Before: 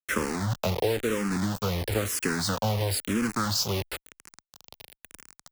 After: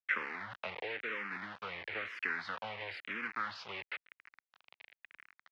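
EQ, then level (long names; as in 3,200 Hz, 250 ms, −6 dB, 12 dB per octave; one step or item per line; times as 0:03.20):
resonant band-pass 2,100 Hz, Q 2.4
high-frequency loss of the air 310 metres
+3.5 dB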